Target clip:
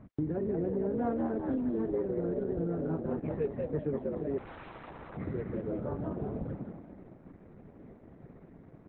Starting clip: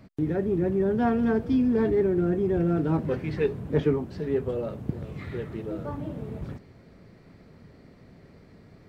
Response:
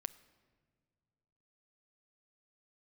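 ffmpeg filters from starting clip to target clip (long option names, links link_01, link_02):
-filter_complex "[0:a]asplit=2[link_01][link_02];[link_02]asplit=5[link_03][link_04][link_05][link_06][link_07];[link_03]adelay=188,afreqshift=81,volume=-4dB[link_08];[link_04]adelay=376,afreqshift=162,volume=-12.6dB[link_09];[link_05]adelay=564,afreqshift=243,volume=-21.3dB[link_10];[link_06]adelay=752,afreqshift=324,volume=-29.9dB[link_11];[link_07]adelay=940,afreqshift=405,volume=-38.5dB[link_12];[link_08][link_09][link_10][link_11][link_12]amix=inputs=5:normalize=0[link_13];[link_01][link_13]amix=inputs=2:normalize=0,acompressor=threshold=-30dB:ratio=4,asettb=1/sr,asplit=3[link_14][link_15][link_16];[link_14]atrim=end=4.384[link_17];[link_15]atrim=start=4.38:end=5.17,asetpts=PTS-STARTPTS,afade=type=in:duration=0.004:curve=qsin,afade=type=out:start_time=0.786:duration=0.004:curve=qsin,aeval=exprs='(mod(63.1*val(0)+1,2)-1)/63.1':channel_layout=same[link_18];[link_16]atrim=start=5.166[link_19];[link_17][link_18]acrossfade=duration=0.004:curve1=hsin:curve2=qsin[link_20];[link_20][link_19]acrossfade=duration=0.004:curve1=qsin:curve2=hsin,lowpass=1400" -ar 48000 -c:a libopus -b:a 8k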